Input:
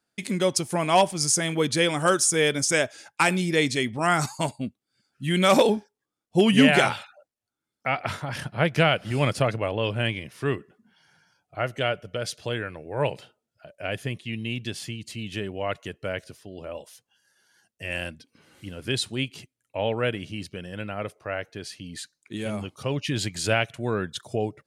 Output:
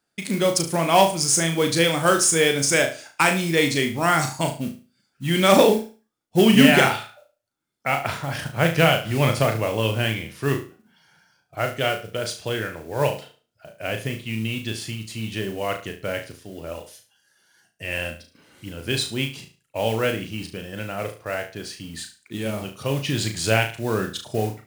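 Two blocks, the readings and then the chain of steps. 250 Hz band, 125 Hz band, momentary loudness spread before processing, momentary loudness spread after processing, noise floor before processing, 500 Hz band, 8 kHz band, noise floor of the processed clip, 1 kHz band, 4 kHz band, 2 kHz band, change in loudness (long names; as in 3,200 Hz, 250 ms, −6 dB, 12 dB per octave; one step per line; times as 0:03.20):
+3.5 dB, +3.5 dB, 16 LU, 17 LU, below −85 dBFS, +3.5 dB, +3.5 dB, −73 dBFS, +3.0 dB, +3.5 dB, +3.5 dB, +3.5 dB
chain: noise that follows the level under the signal 19 dB
flutter between parallel walls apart 6.2 metres, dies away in 0.35 s
level +2 dB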